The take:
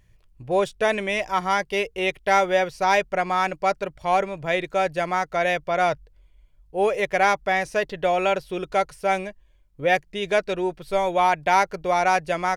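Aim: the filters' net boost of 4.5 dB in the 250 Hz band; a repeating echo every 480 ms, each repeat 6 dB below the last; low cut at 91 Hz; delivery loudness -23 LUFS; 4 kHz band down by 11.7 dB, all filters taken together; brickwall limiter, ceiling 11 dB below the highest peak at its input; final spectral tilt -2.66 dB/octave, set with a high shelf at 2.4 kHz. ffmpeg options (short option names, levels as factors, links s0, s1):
-af "highpass=91,equalizer=f=250:t=o:g=8.5,highshelf=f=2400:g=-8.5,equalizer=f=4000:t=o:g=-8.5,alimiter=limit=0.106:level=0:latency=1,aecho=1:1:480|960|1440|1920|2400|2880:0.501|0.251|0.125|0.0626|0.0313|0.0157,volume=1.78"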